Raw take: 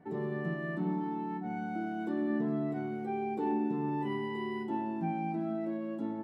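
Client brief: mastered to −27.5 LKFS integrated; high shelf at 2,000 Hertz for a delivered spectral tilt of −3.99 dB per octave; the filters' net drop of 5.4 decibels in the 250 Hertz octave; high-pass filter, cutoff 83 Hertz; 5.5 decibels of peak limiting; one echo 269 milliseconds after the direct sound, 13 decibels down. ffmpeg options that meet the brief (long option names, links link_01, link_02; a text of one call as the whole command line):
ffmpeg -i in.wav -af "highpass=83,equalizer=frequency=250:width_type=o:gain=-7,highshelf=frequency=2000:gain=-7,alimiter=level_in=6.5dB:limit=-24dB:level=0:latency=1,volume=-6.5dB,aecho=1:1:269:0.224,volume=12dB" out.wav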